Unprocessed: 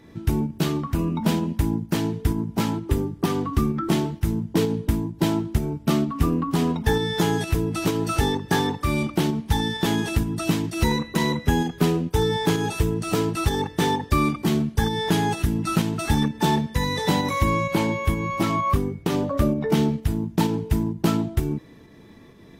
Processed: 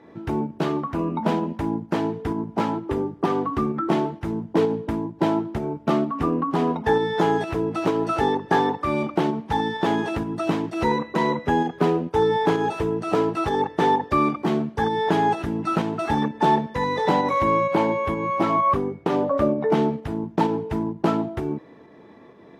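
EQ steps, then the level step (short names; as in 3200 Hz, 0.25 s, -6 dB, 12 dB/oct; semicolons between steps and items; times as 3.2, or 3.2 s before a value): band-pass 710 Hz, Q 0.86; +6.5 dB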